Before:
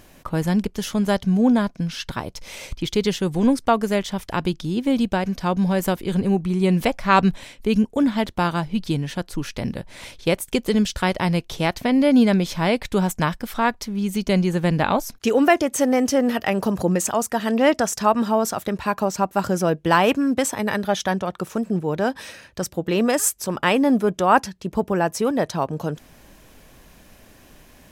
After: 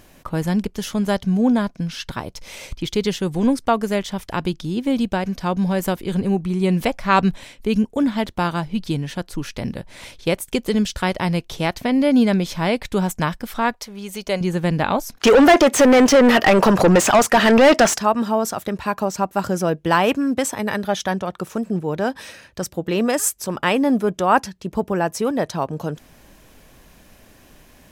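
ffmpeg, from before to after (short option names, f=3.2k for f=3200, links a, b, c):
-filter_complex "[0:a]asettb=1/sr,asplit=3[a][b][c];[a]atrim=end=13.734[d];[b]atrim=start=13.73:end=14.41,asetpts=PTS-STARTPTS,afade=t=in:d=0.004:c=qsin,afade=t=out:st=0.676:d=0.004:c=qsin,lowshelf=f=380:t=q:w=1.5:g=-8.5[e];[c]atrim=start=14.406[f];[d][e]acrossfade=d=0.004:c1=hsin:c2=qsin[g];[g][f]acrossfade=d=0.004:c1=qsin:c2=hsin,asettb=1/sr,asplit=3[h][i][j];[h]atrim=end=15.174[k];[i]atrim=start=15.17:end=17.98,asetpts=PTS-STARTPTS,afade=t=in:d=0.004:c=qsin,afade=t=out:st=2.806:d=0.004:c=qsin,asplit=2[l][m];[m]highpass=f=720:p=1,volume=27dB,asoftclip=type=tanh:threshold=-3.5dB[n];[l][n]amix=inputs=2:normalize=0,lowpass=f=2.5k:p=1,volume=-6dB[o];[j]atrim=start=17.976[p];[k][o]acrossfade=d=0.004:c1=hsin:c2=qsin[q];[q][p]acrossfade=d=0.004:c1=qsin:c2=hsin"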